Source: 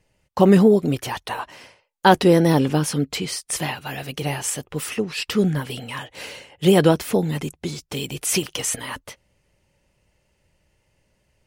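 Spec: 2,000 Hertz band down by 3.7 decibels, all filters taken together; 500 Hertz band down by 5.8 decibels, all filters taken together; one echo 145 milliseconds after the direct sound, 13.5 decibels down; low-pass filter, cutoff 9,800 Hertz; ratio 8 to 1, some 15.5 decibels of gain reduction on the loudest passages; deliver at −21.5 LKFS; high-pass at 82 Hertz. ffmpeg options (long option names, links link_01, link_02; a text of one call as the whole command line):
ffmpeg -i in.wav -af "highpass=82,lowpass=9800,equalizer=frequency=500:width_type=o:gain=-7.5,equalizer=frequency=2000:width_type=o:gain=-4.5,acompressor=threshold=-29dB:ratio=8,aecho=1:1:145:0.211,volume=12dB" out.wav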